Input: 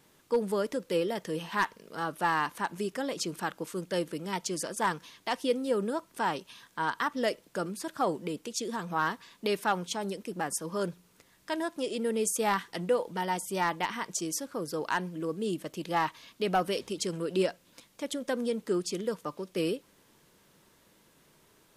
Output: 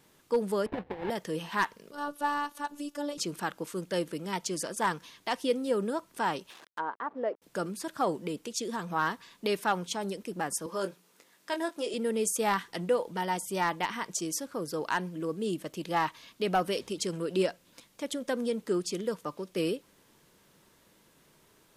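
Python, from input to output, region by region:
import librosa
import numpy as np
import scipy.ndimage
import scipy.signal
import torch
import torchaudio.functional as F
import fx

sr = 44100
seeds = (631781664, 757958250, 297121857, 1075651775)

y = fx.chain(x, sr, fx.sample_hold(seeds[0], rate_hz=1300.0, jitter_pct=20),
    fx.over_compress(threshold_db=-32.0, ratio=-0.5),
    fx.air_absorb(metres=440.0), at=(0.66, 1.1))
y = fx.chain(y, sr, fx.peak_eq(hz=2100.0, db=-9.0, octaves=0.49),
    fx.robotise(hz=290.0), at=(1.91, 3.18))
y = fx.chain(y, sr, fx.delta_hold(step_db=-44.0),
    fx.highpass(hz=370.0, slope=12),
    fx.env_lowpass_down(base_hz=940.0, full_db=-30.5), at=(6.5, 7.42))
y = fx.chain(y, sr, fx.highpass(hz=280.0, slope=12),
    fx.doubler(ms=21.0, db=-8), at=(10.66, 11.94))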